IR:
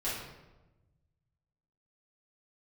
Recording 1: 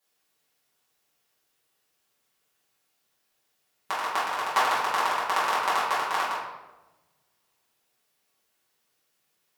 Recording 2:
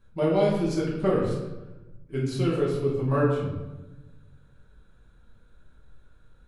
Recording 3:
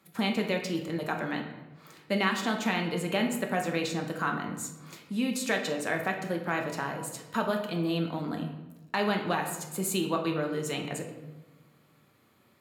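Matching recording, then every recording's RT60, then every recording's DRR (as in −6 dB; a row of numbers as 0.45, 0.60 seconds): 1; 1.1, 1.1, 1.1 seconds; −10.5, −6.5, 2.5 decibels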